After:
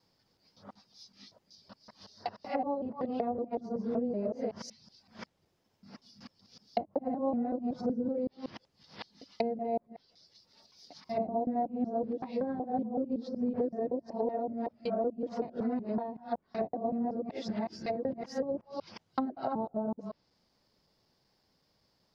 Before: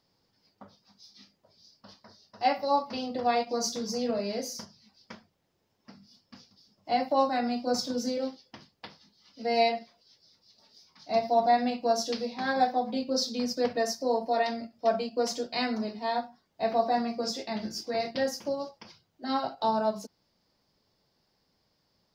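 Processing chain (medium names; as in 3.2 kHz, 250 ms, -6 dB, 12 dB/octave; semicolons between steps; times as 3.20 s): time reversed locally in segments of 188 ms; low-pass that closes with the level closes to 420 Hz, closed at -26 dBFS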